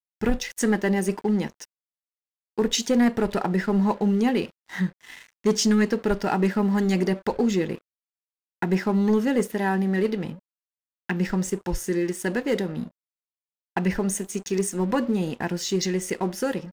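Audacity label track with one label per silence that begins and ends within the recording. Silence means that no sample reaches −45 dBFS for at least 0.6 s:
1.650000	2.580000	silence
7.790000	8.620000	silence
10.390000	11.090000	silence
12.890000	13.760000	silence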